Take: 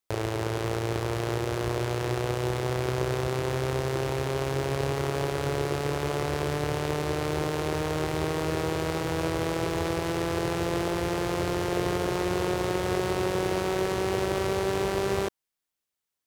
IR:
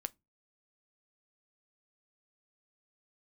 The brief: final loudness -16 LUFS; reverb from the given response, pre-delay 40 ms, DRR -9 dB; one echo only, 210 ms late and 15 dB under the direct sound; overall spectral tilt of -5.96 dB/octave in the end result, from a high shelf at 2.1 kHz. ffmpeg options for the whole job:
-filter_complex "[0:a]highshelf=f=2100:g=-5.5,aecho=1:1:210:0.178,asplit=2[s0][s1];[1:a]atrim=start_sample=2205,adelay=40[s2];[s1][s2]afir=irnorm=-1:irlink=0,volume=3.55[s3];[s0][s3]amix=inputs=2:normalize=0,volume=1.5"

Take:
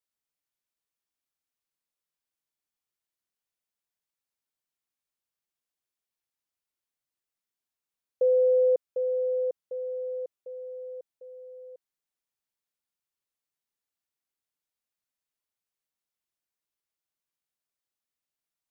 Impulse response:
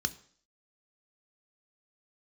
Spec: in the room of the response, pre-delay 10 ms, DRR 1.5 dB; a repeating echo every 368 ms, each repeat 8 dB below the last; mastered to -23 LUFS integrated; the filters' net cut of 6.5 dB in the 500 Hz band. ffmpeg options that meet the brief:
-filter_complex "[0:a]equalizer=f=500:t=o:g=-6.5,aecho=1:1:368|736|1104|1472|1840:0.398|0.159|0.0637|0.0255|0.0102,asplit=2[s0][s1];[1:a]atrim=start_sample=2205,adelay=10[s2];[s1][s2]afir=irnorm=-1:irlink=0,volume=0.501[s3];[s0][s3]amix=inputs=2:normalize=0,volume=5.62"

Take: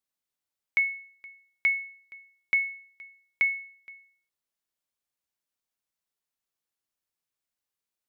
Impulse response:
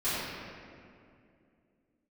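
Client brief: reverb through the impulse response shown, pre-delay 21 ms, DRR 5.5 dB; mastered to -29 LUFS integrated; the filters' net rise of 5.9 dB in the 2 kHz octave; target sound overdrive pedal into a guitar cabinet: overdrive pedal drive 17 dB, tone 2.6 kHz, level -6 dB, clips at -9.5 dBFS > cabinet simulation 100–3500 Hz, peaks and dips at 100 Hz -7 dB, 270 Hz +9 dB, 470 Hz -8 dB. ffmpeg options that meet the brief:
-filter_complex "[0:a]equalizer=f=2000:t=o:g=6.5,asplit=2[s0][s1];[1:a]atrim=start_sample=2205,adelay=21[s2];[s1][s2]afir=irnorm=-1:irlink=0,volume=0.158[s3];[s0][s3]amix=inputs=2:normalize=0,asplit=2[s4][s5];[s5]highpass=f=720:p=1,volume=7.08,asoftclip=type=tanh:threshold=0.335[s6];[s4][s6]amix=inputs=2:normalize=0,lowpass=f=2600:p=1,volume=0.501,highpass=100,equalizer=f=100:t=q:w=4:g=-7,equalizer=f=270:t=q:w=4:g=9,equalizer=f=470:t=q:w=4:g=-8,lowpass=f=3500:w=0.5412,lowpass=f=3500:w=1.3066,volume=0.376"

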